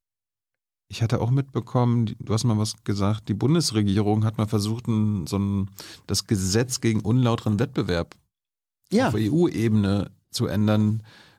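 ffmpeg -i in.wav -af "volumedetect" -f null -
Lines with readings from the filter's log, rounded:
mean_volume: -23.7 dB
max_volume: -10.2 dB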